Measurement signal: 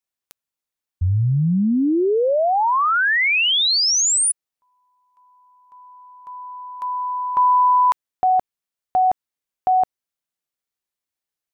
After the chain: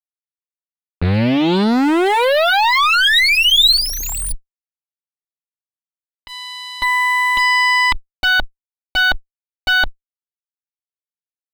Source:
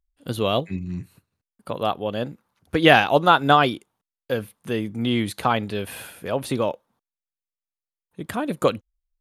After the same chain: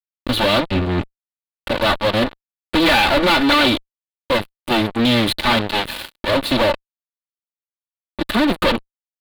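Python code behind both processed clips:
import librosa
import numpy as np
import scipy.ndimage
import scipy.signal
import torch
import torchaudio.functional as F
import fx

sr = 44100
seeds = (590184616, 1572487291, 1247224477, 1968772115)

y = fx.lower_of_two(x, sr, delay_ms=3.4)
y = fx.fuzz(y, sr, gain_db=36.0, gate_db=-36.0)
y = fx.high_shelf_res(y, sr, hz=4900.0, db=-7.0, q=3.0)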